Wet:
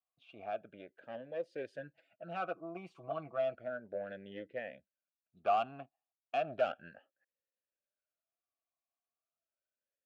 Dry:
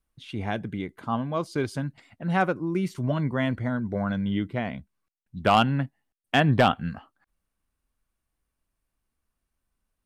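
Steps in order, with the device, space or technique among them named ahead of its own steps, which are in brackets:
talk box (tube saturation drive 20 dB, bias 0.6; formant filter swept between two vowels a-e 0.34 Hz)
0:01.78–0:03.55: comb filter 6.1 ms, depth 69%
level +1 dB

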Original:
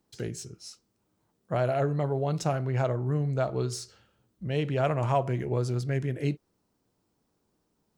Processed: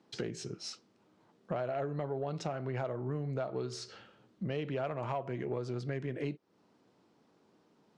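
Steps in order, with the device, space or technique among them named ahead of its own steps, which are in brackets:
AM radio (band-pass filter 180–4,100 Hz; downward compressor 5 to 1, threshold −43 dBFS, peak gain reduction 19.5 dB; soft clipping −32 dBFS, distortion −24 dB)
level +9 dB

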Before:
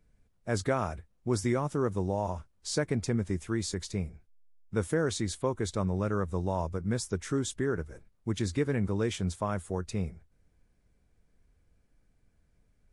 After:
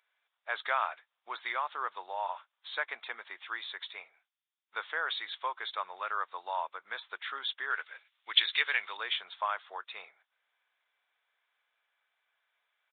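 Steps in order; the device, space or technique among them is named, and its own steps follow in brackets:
0:07.70–0:08.97: meter weighting curve D
musical greeting card (downsampling to 8,000 Hz; high-pass filter 900 Hz 24 dB per octave; parametric band 3,500 Hz +6.5 dB 0.29 octaves)
level +5.5 dB

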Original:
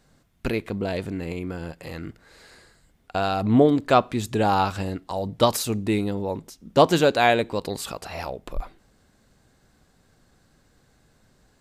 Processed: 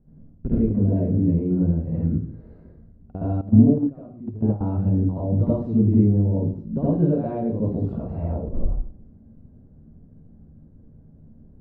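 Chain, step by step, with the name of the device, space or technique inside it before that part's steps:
television next door (downward compressor 3 to 1, threshold −27 dBFS, peak gain reduction 12.5 dB; low-pass filter 250 Hz 12 dB per octave; convolution reverb RT60 0.50 s, pre-delay 62 ms, DRR −7.5 dB)
0:03.41–0:04.61: noise gate −21 dBFS, range −16 dB
level +5.5 dB

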